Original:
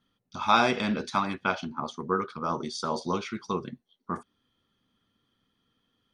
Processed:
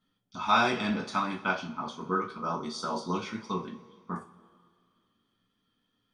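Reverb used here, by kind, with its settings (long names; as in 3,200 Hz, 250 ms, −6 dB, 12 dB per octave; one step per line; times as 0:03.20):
coupled-rooms reverb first 0.26 s, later 2 s, from −21 dB, DRR −1 dB
level −5.5 dB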